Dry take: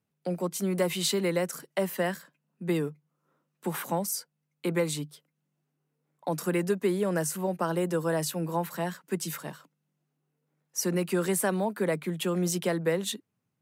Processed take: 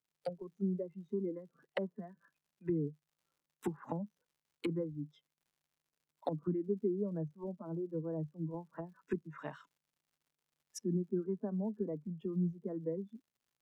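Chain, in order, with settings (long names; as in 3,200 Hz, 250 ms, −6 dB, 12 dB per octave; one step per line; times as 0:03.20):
treble cut that deepens with the level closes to 310 Hz, closed at −28 dBFS
noise reduction from a noise print of the clip's start 18 dB
surface crackle 130 per second −64 dBFS
level −2 dB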